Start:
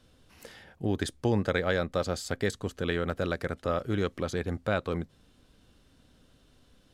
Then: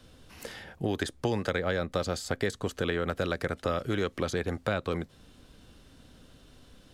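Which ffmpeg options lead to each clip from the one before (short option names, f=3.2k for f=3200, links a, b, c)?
-filter_complex "[0:a]acrossover=split=370|1800[a][b][c];[a]acompressor=threshold=-39dB:ratio=4[d];[b]acompressor=threshold=-37dB:ratio=4[e];[c]acompressor=threshold=-44dB:ratio=4[f];[d][e][f]amix=inputs=3:normalize=0,volume=6.5dB"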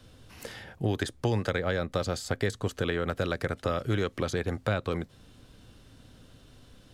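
-af "equalizer=f=110:w=3.8:g=7.5"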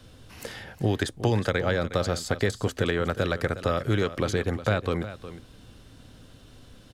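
-af "aecho=1:1:362:0.211,volume=3.5dB"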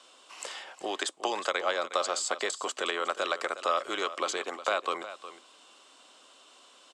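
-af "highpass=f=430:w=0.5412,highpass=f=430:w=1.3066,equalizer=f=470:t=q:w=4:g=-8,equalizer=f=1.1k:t=q:w=4:g=8,equalizer=f=1.7k:t=q:w=4:g=-6,equalizer=f=2.9k:t=q:w=4:g=4,equalizer=f=7.7k:t=q:w=4:g=9,lowpass=f=9k:w=0.5412,lowpass=f=9k:w=1.3066"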